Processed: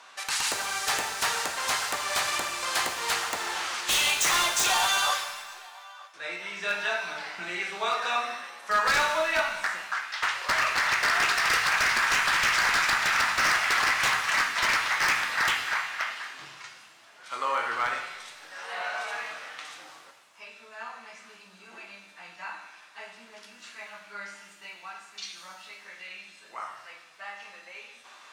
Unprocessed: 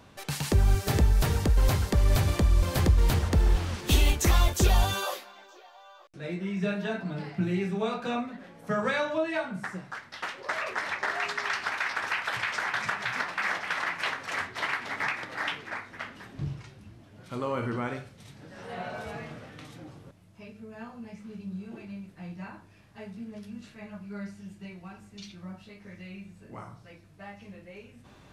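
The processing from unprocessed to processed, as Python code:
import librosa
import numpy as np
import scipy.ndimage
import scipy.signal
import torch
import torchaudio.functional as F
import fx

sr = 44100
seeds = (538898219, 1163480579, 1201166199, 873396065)

y = scipy.signal.sosfilt(scipy.signal.cheby1(2, 1.0, [1100.0, 8300.0], 'bandpass', fs=sr, output='sos'), x)
y = 10.0 ** (-27.5 / 20.0) * (np.abs((y / 10.0 ** (-27.5 / 20.0) + 3.0) % 4.0 - 2.0) - 1.0)
y = fx.rev_shimmer(y, sr, seeds[0], rt60_s=1.1, semitones=7, shimmer_db=-8, drr_db=4.5)
y = y * librosa.db_to_amplitude(8.5)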